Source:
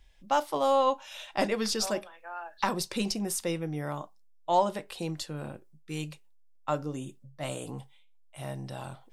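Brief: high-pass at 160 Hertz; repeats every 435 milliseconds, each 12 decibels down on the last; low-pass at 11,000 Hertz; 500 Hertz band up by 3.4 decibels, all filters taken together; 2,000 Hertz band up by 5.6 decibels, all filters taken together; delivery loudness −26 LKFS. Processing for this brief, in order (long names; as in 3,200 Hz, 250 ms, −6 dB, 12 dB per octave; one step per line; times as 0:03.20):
high-pass filter 160 Hz
low-pass filter 11,000 Hz
parametric band 500 Hz +3.5 dB
parametric band 2,000 Hz +7 dB
repeating echo 435 ms, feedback 25%, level −12 dB
level +3 dB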